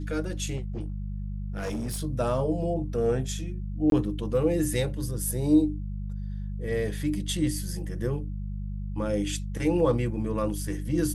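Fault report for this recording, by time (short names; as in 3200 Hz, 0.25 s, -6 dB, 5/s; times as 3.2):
hum 50 Hz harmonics 4 -33 dBFS
0.56–2.02 clipped -27.5 dBFS
3.9–3.92 gap 22 ms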